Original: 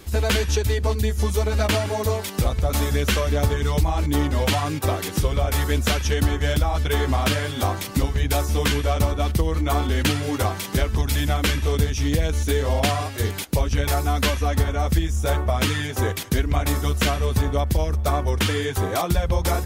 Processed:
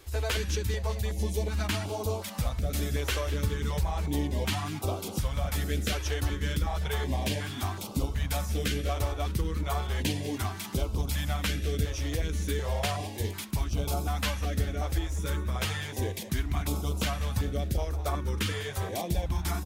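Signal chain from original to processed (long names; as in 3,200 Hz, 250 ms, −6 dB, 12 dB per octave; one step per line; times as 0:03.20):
echo with shifted repeats 198 ms, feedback 52%, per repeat +120 Hz, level −15 dB
notch on a step sequencer 2.7 Hz 200–1,800 Hz
level −8 dB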